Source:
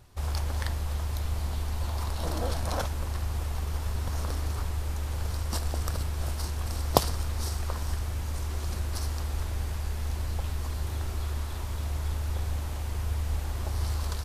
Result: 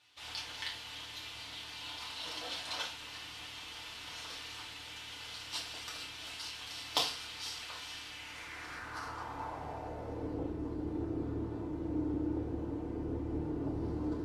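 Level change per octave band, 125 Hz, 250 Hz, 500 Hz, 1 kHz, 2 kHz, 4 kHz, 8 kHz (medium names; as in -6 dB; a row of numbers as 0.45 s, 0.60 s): -15.5 dB, +3.5 dB, -5.5 dB, -7.0 dB, -1.0 dB, +2.0 dB, -8.0 dB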